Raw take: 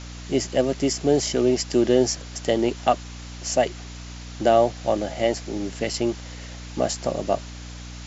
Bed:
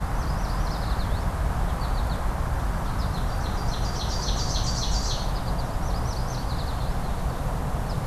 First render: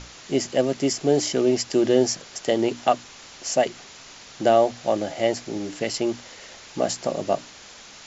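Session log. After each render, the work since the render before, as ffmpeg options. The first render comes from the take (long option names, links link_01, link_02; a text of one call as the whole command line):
ffmpeg -i in.wav -af "bandreject=frequency=60:width_type=h:width=6,bandreject=frequency=120:width_type=h:width=6,bandreject=frequency=180:width_type=h:width=6,bandreject=frequency=240:width_type=h:width=6,bandreject=frequency=300:width_type=h:width=6" out.wav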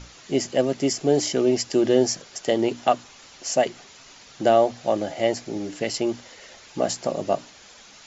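ffmpeg -i in.wav -af "afftdn=noise_reduction=6:noise_floor=-45" out.wav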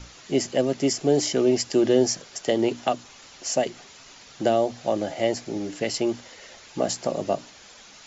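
ffmpeg -i in.wav -filter_complex "[0:a]acrossover=split=480|3000[link_01][link_02][link_03];[link_02]acompressor=threshold=-23dB:ratio=6[link_04];[link_01][link_04][link_03]amix=inputs=3:normalize=0" out.wav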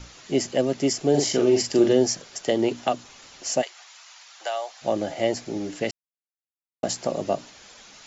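ffmpeg -i in.wav -filter_complex "[0:a]asettb=1/sr,asplit=3[link_01][link_02][link_03];[link_01]atrim=end=1.104[link_04];[link_02]atrim=start=1.1:end=1.93,asetpts=PTS-STARTPTS,afade=type=in:duration=0.004:curve=qsin,afade=type=out:start_time=0.826:duration=0.004:curve=qsin,asplit=2[link_05][link_06];[link_06]adelay=42,volume=-4.5dB[link_07];[link_05][link_07]amix=inputs=2:normalize=0,atrim=end_sample=36603[link_08];[link_03]atrim=start=1.926[link_09];[link_04][link_08]acrossfade=duration=0.004:curve1=hsin:curve2=qsin[link_10];[link_10][link_09]acrossfade=duration=0.004:curve1=qsin:curve2=hsin,asplit=3[link_11][link_12][link_13];[link_11]afade=type=out:start_time=3.61:duration=0.02[link_14];[link_12]highpass=frequency=780:width=0.5412,highpass=frequency=780:width=1.3066,afade=type=in:start_time=3.61:duration=0.02,afade=type=out:start_time=4.81:duration=0.02[link_15];[link_13]afade=type=in:start_time=4.81:duration=0.02[link_16];[link_14][link_15][link_16]amix=inputs=3:normalize=0,asplit=3[link_17][link_18][link_19];[link_17]atrim=end=5.91,asetpts=PTS-STARTPTS,afade=type=out:start_time=5.906:duration=0.004:curve=hsin[link_20];[link_18]atrim=start=5.91:end=6.83,asetpts=PTS-STARTPTS,volume=0[link_21];[link_19]atrim=start=6.83,asetpts=PTS-STARTPTS,afade=type=in:duration=0.004:curve=hsin[link_22];[link_20][link_21][link_22]concat=n=3:v=0:a=1" out.wav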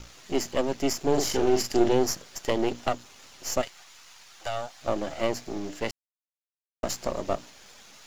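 ffmpeg -i in.wav -af "aeval=exprs='if(lt(val(0),0),0.251*val(0),val(0))':channel_layout=same,acrusher=bits=10:mix=0:aa=0.000001" out.wav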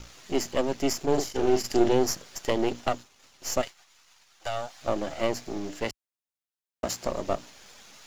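ffmpeg -i in.wav -filter_complex "[0:a]asplit=3[link_01][link_02][link_03];[link_01]afade=type=out:start_time=1.05:duration=0.02[link_04];[link_02]agate=range=-33dB:threshold=-22dB:ratio=3:release=100:detection=peak,afade=type=in:start_time=1.05:duration=0.02,afade=type=out:start_time=1.63:duration=0.02[link_05];[link_03]afade=type=in:start_time=1.63:duration=0.02[link_06];[link_04][link_05][link_06]amix=inputs=3:normalize=0,asettb=1/sr,asplit=3[link_07][link_08][link_09];[link_07]atrim=end=2.554[link_10];[link_08]atrim=start=2.55:end=4.58,asetpts=PTS-STARTPTS,afade=type=in:duration=0.004:curve=qsin,afade=type=out:start_time=2.026:duration=0.004:curve=qsin,agate=range=-33dB:threshold=-45dB:ratio=3:release=100:detection=peak[link_11];[link_09]atrim=start=4.576[link_12];[link_10][link_11]acrossfade=duration=0.004:curve1=hsin:curve2=qsin[link_13];[link_13][link_12]acrossfade=duration=0.004:curve1=qsin:curve2=hsin,asettb=1/sr,asplit=3[link_14][link_15][link_16];[link_14]atrim=end=5.854[link_17];[link_15]atrim=start=5.85:end=7.05,asetpts=PTS-STARTPTS,afade=type=in:duration=0.004:curve=qsin,afade=type=out:start_time=1.196:duration=0.004:curve=qsin,highpass=40[link_18];[link_16]atrim=start=7.046[link_19];[link_17][link_18]acrossfade=duration=0.004:curve1=hsin:curve2=qsin[link_20];[link_20][link_19]acrossfade=duration=0.004:curve1=qsin:curve2=hsin" out.wav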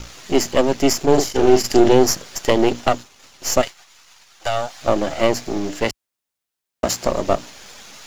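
ffmpeg -i in.wav -af "volume=10dB,alimiter=limit=-1dB:level=0:latency=1" out.wav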